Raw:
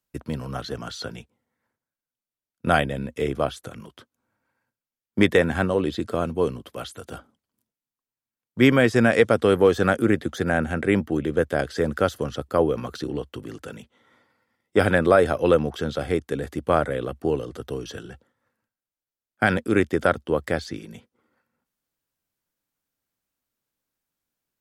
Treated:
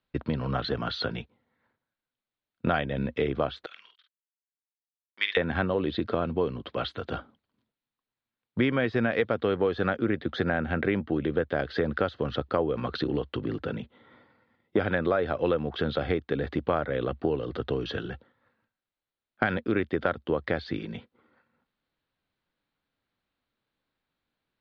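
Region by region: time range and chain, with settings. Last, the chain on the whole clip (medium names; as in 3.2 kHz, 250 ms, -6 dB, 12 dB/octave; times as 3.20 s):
3.66–5.37 s: gate -46 dBFS, range -34 dB + Butterworth band-pass 4.5 kHz, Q 0.73 + doubling 49 ms -6 dB
13.42–14.80 s: high-pass 49 Hz + tilt shelf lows +3.5 dB, about 690 Hz
whole clip: Chebyshev low-pass 4.1 kHz, order 4; compression 4:1, threshold -29 dBFS; trim +5 dB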